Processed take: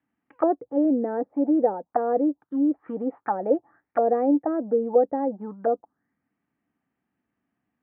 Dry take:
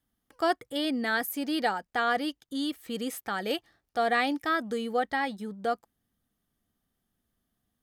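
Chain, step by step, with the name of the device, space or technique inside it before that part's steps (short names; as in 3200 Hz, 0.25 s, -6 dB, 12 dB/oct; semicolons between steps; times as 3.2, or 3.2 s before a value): envelope filter bass rig (envelope low-pass 520–2600 Hz down, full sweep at -27 dBFS; speaker cabinet 82–2100 Hz, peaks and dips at 93 Hz -9 dB, 290 Hz +8 dB, 890 Hz +6 dB)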